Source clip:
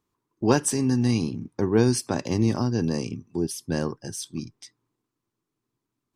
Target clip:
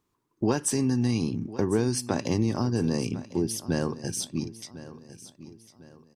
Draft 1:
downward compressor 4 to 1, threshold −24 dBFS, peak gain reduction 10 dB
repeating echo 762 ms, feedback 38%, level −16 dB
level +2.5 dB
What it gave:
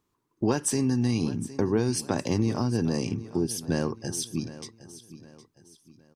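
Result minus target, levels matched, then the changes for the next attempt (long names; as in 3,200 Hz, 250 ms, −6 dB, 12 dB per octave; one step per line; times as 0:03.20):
echo 290 ms early
change: repeating echo 1,052 ms, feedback 38%, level −16 dB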